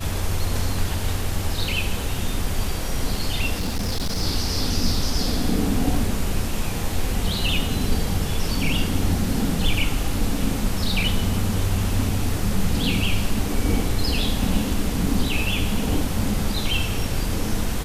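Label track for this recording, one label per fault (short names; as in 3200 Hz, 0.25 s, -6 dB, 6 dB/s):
3.570000	4.230000	clipped -20 dBFS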